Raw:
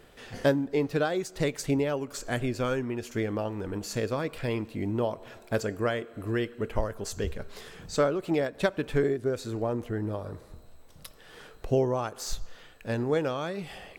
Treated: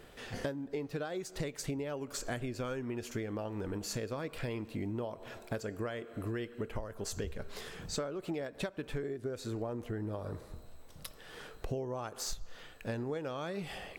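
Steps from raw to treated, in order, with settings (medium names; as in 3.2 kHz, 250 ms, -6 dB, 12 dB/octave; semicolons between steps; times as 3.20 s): compression 10:1, threshold -34 dBFS, peak gain reduction 16 dB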